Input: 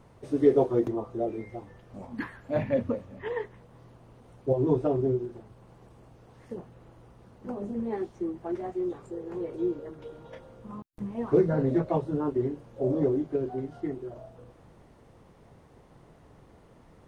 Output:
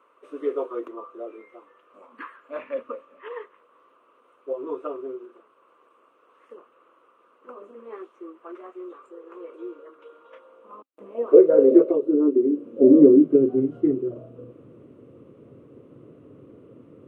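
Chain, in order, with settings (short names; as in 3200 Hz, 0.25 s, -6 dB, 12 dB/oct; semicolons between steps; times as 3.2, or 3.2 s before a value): high-pass sweep 1100 Hz -> 120 Hz, 10.29–13.86; 11.82–12.66 compressor 4:1, threshold -28 dBFS, peak gain reduction 10 dB; EQ curve 180 Hz 0 dB, 270 Hz +14 dB, 530 Hz +11 dB, 810 Hz -11 dB, 1200 Hz +5 dB, 1800 Hz -7 dB, 2700 Hz +3 dB, 4800 Hz -16 dB, 7800 Hz -9 dB; gain -2 dB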